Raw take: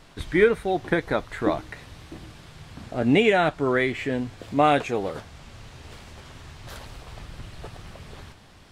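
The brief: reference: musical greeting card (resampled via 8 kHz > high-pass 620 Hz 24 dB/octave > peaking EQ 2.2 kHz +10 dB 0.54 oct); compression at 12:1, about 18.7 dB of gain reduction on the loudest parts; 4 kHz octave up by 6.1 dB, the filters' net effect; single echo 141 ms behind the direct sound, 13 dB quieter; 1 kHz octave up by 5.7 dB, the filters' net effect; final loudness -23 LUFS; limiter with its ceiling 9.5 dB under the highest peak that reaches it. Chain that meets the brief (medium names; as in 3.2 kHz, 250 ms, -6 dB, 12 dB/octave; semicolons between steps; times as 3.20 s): peaking EQ 1 kHz +8.5 dB; peaking EQ 4 kHz +4.5 dB; compression 12:1, threshold -29 dBFS; peak limiter -28 dBFS; delay 141 ms -13 dB; resampled via 8 kHz; high-pass 620 Hz 24 dB/octave; peaking EQ 2.2 kHz +10 dB 0.54 oct; trim +15.5 dB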